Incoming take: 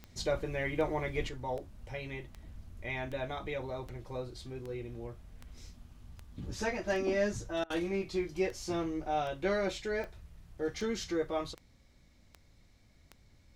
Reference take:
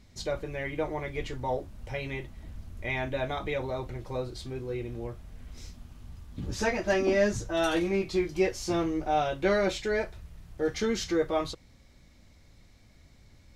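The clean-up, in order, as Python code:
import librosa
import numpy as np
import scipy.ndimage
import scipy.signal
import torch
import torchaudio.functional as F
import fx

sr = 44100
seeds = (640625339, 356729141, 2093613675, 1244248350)

y = fx.fix_declick_ar(x, sr, threshold=10.0)
y = fx.fix_interpolate(y, sr, at_s=(7.64,), length_ms=60.0)
y = fx.fix_level(y, sr, at_s=1.29, step_db=6.0)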